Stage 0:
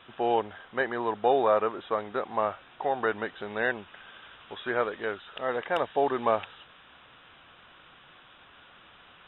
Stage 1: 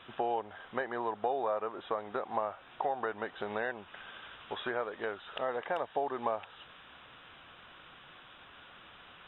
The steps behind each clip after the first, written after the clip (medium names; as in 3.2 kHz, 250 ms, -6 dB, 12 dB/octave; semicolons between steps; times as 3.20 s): compression 4:1, threshold -36 dBFS, peak gain reduction 15 dB; dynamic bell 770 Hz, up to +6 dB, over -51 dBFS, Q 0.89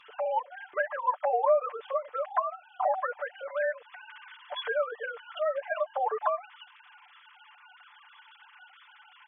formants replaced by sine waves; comb 6.8 ms, depth 85%; trim +3 dB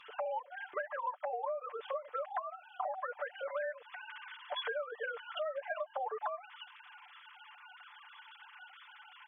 compression 16:1, threshold -34 dBFS, peak gain reduction 16 dB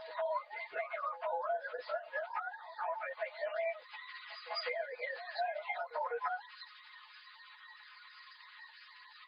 frequency axis rescaled in octaves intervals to 114%; pre-echo 201 ms -14 dB; trim +3.5 dB; MP2 48 kbps 32 kHz